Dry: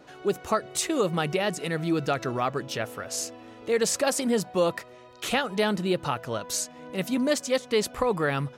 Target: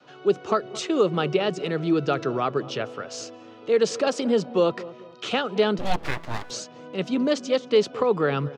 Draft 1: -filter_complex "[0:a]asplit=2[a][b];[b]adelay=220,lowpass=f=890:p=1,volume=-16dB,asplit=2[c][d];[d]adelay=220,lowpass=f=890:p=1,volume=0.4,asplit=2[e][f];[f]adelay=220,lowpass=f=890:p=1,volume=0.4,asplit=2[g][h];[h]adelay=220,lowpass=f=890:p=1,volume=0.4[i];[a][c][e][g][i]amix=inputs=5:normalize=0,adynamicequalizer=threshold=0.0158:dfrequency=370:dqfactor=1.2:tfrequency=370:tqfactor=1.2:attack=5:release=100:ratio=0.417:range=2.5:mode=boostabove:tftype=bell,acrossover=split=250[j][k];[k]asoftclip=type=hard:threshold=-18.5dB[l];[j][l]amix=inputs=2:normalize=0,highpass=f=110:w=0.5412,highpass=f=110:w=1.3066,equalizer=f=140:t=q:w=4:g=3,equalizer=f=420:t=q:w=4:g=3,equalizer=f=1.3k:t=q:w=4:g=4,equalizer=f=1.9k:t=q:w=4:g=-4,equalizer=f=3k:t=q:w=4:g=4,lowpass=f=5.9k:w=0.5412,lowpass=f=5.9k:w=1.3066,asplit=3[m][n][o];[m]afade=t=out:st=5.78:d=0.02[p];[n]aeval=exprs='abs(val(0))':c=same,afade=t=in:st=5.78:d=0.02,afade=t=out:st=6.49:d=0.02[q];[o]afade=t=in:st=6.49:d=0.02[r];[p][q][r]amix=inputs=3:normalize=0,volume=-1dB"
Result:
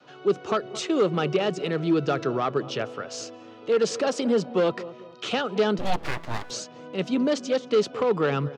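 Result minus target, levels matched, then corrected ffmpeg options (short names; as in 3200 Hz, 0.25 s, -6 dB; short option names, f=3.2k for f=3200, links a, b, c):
hard clip: distortion +23 dB
-filter_complex "[0:a]asplit=2[a][b];[b]adelay=220,lowpass=f=890:p=1,volume=-16dB,asplit=2[c][d];[d]adelay=220,lowpass=f=890:p=1,volume=0.4,asplit=2[e][f];[f]adelay=220,lowpass=f=890:p=1,volume=0.4,asplit=2[g][h];[h]adelay=220,lowpass=f=890:p=1,volume=0.4[i];[a][c][e][g][i]amix=inputs=5:normalize=0,adynamicequalizer=threshold=0.0158:dfrequency=370:dqfactor=1.2:tfrequency=370:tqfactor=1.2:attack=5:release=100:ratio=0.417:range=2.5:mode=boostabove:tftype=bell,acrossover=split=250[j][k];[k]asoftclip=type=hard:threshold=-11.5dB[l];[j][l]amix=inputs=2:normalize=0,highpass=f=110:w=0.5412,highpass=f=110:w=1.3066,equalizer=f=140:t=q:w=4:g=3,equalizer=f=420:t=q:w=4:g=3,equalizer=f=1.3k:t=q:w=4:g=4,equalizer=f=1.9k:t=q:w=4:g=-4,equalizer=f=3k:t=q:w=4:g=4,lowpass=f=5.9k:w=0.5412,lowpass=f=5.9k:w=1.3066,asplit=3[m][n][o];[m]afade=t=out:st=5.78:d=0.02[p];[n]aeval=exprs='abs(val(0))':c=same,afade=t=in:st=5.78:d=0.02,afade=t=out:st=6.49:d=0.02[q];[o]afade=t=in:st=6.49:d=0.02[r];[p][q][r]amix=inputs=3:normalize=0,volume=-1dB"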